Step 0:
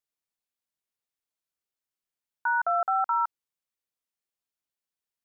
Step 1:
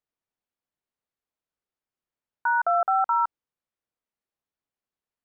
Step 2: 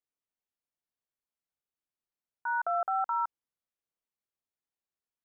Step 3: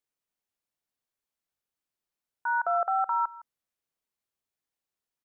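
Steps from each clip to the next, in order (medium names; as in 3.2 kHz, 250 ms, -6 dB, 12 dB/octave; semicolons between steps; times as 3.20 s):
low-pass 1.2 kHz 6 dB/octave; trim +5.5 dB
transient shaper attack -3 dB, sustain +1 dB; trim -7 dB
delay 161 ms -19.5 dB; trim +3.5 dB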